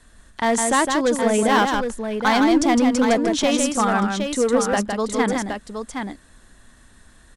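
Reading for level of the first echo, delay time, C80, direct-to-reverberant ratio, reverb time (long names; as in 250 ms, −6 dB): −5.0 dB, 159 ms, no reverb audible, no reverb audible, no reverb audible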